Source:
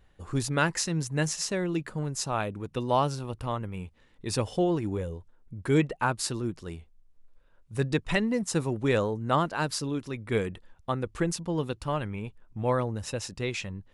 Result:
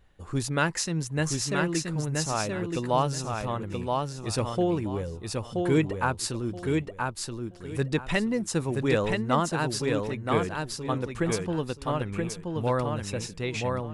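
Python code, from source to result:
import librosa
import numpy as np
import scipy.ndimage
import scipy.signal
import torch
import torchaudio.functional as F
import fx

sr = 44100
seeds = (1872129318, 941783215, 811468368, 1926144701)

y = fx.echo_feedback(x, sr, ms=976, feedback_pct=22, wet_db=-3.5)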